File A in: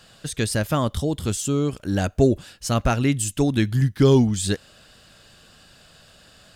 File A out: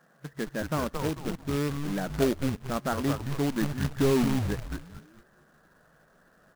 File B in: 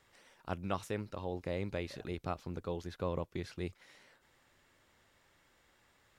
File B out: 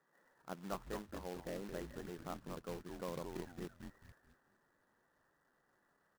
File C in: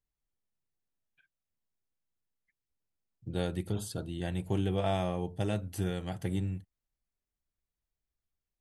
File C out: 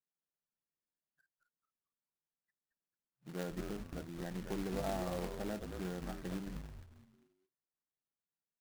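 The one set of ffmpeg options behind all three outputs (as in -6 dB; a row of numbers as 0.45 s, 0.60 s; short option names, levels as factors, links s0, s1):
-filter_complex "[0:a]afftfilt=real='re*between(b*sr/4096,130,2000)':imag='im*between(b*sr/4096,130,2000)':win_size=4096:overlap=0.75,asplit=5[s0][s1][s2][s3][s4];[s1]adelay=221,afreqshift=-140,volume=0.596[s5];[s2]adelay=442,afreqshift=-280,volume=0.197[s6];[s3]adelay=663,afreqshift=-420,volume=0.0646[s7];[s4]adelay=884,afreqshift=-560,volume=0.0214[s8];[s0][s5][s6][s7][s8]amix=inputs=5:normalize=0,acrusher=bits=2:mode=log:mix=0:aa=0.000001,volume=0.422"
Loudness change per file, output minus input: -7.5 LU, -6.5 LU, -7.5 LU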